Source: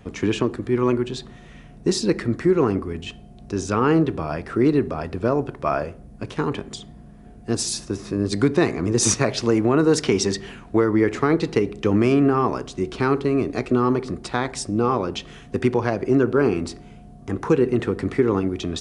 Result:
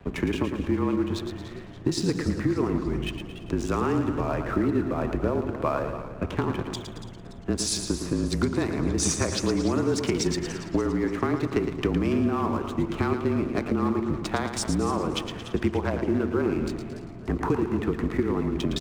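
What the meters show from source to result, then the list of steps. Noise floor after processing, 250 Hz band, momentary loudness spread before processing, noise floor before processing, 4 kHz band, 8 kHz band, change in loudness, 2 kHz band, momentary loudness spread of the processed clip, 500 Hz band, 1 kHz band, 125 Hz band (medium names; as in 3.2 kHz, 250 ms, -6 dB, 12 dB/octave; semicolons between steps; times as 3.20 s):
-40 dBFS, -4.0 dB, 12 LU, -44 dBFS, -3.0 dB, -4.5 dB, -5.0 dB, -5.0 dB, 7 LU, -6.5 dB, -5.0 dB, -3.5 dB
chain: local Wiener filter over 9 samples; high-pass 41 Hz; compression, threshold -26 dBFS, peak gain reduction 13 dB; crossover distortion -52.5 dBFS; frequency shift -32 Hz; on a send: feedback delay 112 ms, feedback 46%, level -8 dB; on the sum: modulated delay 288 ms, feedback 48%, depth 131 cents, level -13 dB; trim +4 dB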